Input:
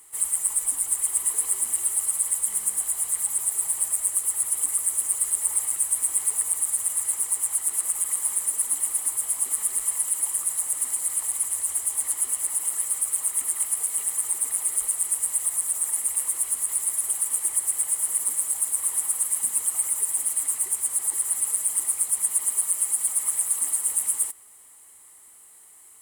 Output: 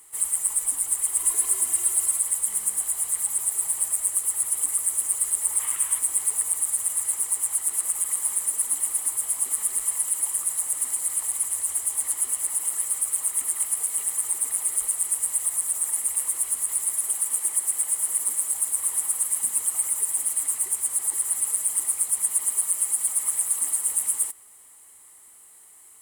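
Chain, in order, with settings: 1.19–2.19 s: comb 2.9 ms, depth 78%; 5.60–5.99 s: time-frequency box 900–3700 Hz +7 dB; 17.01–18.49 s: high-pass 140 Hz 12 dB/octave

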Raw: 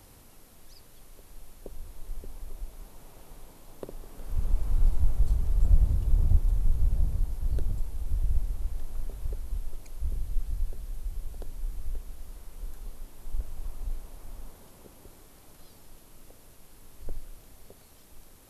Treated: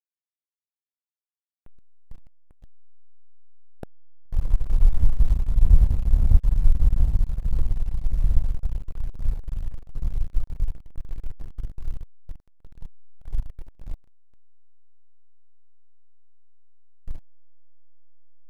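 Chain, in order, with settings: echo that smears into a reverb 901 ms, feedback 78%, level -12 dB; hysteresis with a dead band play -21.5 dBFS; dynamic bell 350 Hz, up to -5 dB, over -51 dBFS, Q 1.1; trim +7 dB

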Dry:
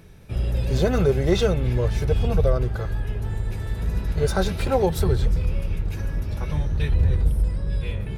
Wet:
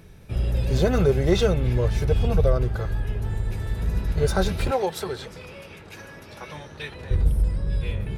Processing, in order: 4.71–7.11 s: frequency weighting A

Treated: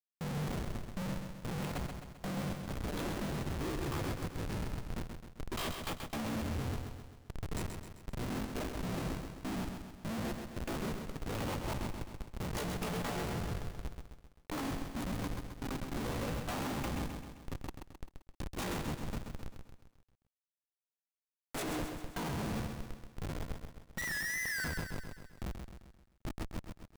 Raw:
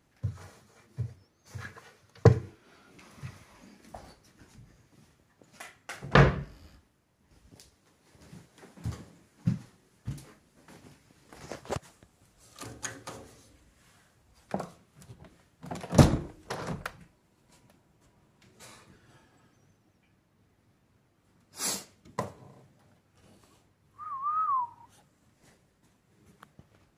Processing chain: peaking EQ 1.2 kHz -8.5 dB 1.1 oct; reverse; compression 6:1, threshold -43 dBFS, peak gain reduction 28.5 dB; reverse; low-pass that closes with the level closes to 1.2 kHz, closed at -42 dBFS; pitch shift +8 st; Schmitt trigger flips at -53.5 dBFS; bit-crushed delay 131 ms, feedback 55%, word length 14-bit, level -6 dB; trim +15 dB

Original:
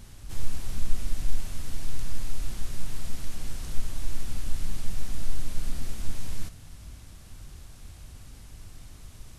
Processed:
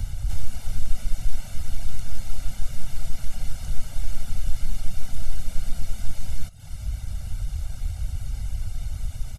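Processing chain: reverb removal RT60 0.56 s; comb 1.4 ms, depth 84%; three bands compressed up and down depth 70%

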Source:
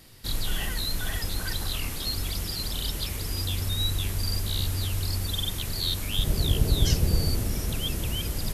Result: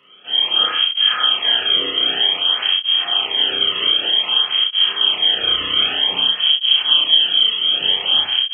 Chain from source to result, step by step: CVSD coder 32 kbps; in parallel at -7 dB: Schmitt trigger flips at -24.5 dBFS; on the sum: frequency inversion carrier 3.2 kHz; high-pass 110 Hz 6 dB/octave; flutter echo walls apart 5.6 m, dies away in 0.86 s; level rider gain up to 12 dB; peak limiter -7 dBFS, peak gain reduction 6 dB; on a send at -2 dB: reverberation RT60 0.50 s, pre-delay 3 ms; on the sum: cancelling through-zero flanger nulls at 0.53 Hz, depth 1.3 ms; trim +2 dB

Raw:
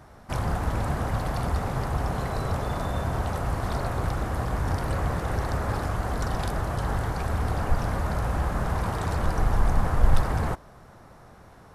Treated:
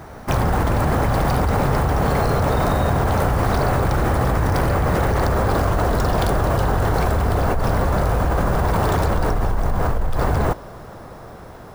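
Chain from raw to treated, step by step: Doppler pass-by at 5.25 s, 16 m/s, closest 1 m; peaking EQ 450 Hz +4 dB 1.2 oct; in parallel at -4 dB: saturation -31.5 dBFS, distortion -8 dB; on the sum: careless resampling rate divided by 2×, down none, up hold; level flattener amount 100%; trim +5.5 dB

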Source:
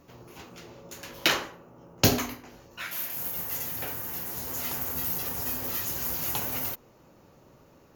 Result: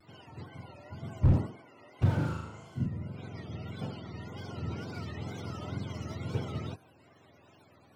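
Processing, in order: spectrum inverted on a logarithmic axis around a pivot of 590 Hz; wow and flutter 130 cents; 2.15–2.86 s: flutter echo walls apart 6.5 m, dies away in 0.73 s; slew-rate limiter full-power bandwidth 15 Hz

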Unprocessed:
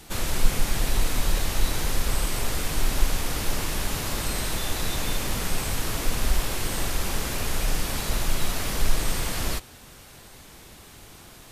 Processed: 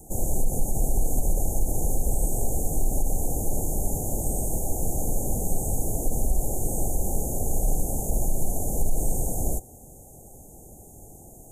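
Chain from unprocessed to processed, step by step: Chebyshev band-stop 800–6600 Hz, order 5; peak limiter -15.5 dBFS, peak gain reduction 9.5 dB; trim +2.5 dB

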